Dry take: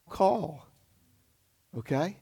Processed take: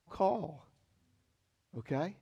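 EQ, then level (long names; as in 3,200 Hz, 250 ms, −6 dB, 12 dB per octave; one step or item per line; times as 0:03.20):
dynamic equaliser 7,100 Hz, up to −4 dB, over −56 dBFS, Q 0.96
high-frequency loss of the air 57 metres
−6.0 dB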